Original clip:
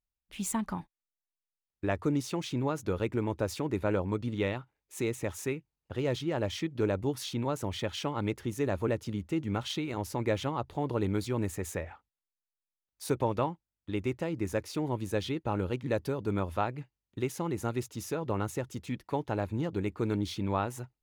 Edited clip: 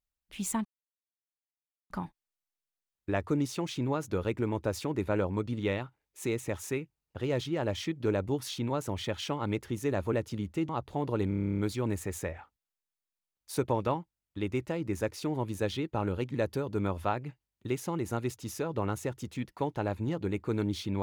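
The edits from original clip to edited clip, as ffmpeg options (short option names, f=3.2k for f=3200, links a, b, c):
-filter_complex "[0:a]asplit=13[a][b][c][d][e][f][g][h][i][j][k][l][m];[a]atrim=end=0.65,asetpts=PTS-STARTPTS,afade=t=out:st=0.646:d=0.004:c=hsin,apad=pad_dur=1.25[n];[b]atrim=start=0.65:end=9.442,asetpts=PTS-STARTPTS,afade=t=in:d=0.004:c=hsin[o];[c]atrim=start=10.508:end=11.132[p];[d]atrim=start=11.098:end=11.132[q];[e]atrim=start=11.098:end=11.132[r];[f]atrim=start=11.098:end=11.132[s];[g]atrim=start=11.098:end=11.132[t];[h]atrim=start=11.098:end=11.132[u];[i]atrim=start=11.098:end=11.132[v];[j]atrim=start=11.098:end=11.132[w];[k]atrim=start=11.098:end=11.132[x];[l]atrim=start=11.098:end=11.132[y];[m]atrim=start=11.098[z];[n][o]concat=n=2:v=0:a=1[aa];[aa][p]acrossfade=d=0.004:c1=hsin:c2=hsin[ab];[ab][q]acrossfade=d=0.004:c1=hsin:c2=hsin[ac];[ac][r]acrossfade=d=0.004:c1=hsin:c2=hsin[ad];[ad][s]acrossfade=d=0.004:c1=hsin:c2=hsin[ae];[ae][t]acrossfade=d=0.004:c1=hsin:c2=hsin[af];[af][u]acrossfade=d=0.004:c1=hsin:c2=hsin[ag];[ag][v]acrossfade=d=0.004:c1=hsin:c2=hsin[ah];[ah][w]acrossfade=d=0.004:c1=hsin:c2=hsin[ai];[ai][x]acrossfade=d=0.004:c1=hsin:c2=hsin[aj];[aj][y]acrossfade=d=0.004:c1=hsin:c2=hsin[ak];[ak][z]acrossfade=d=0.004:c1=hsin:c2=hsin"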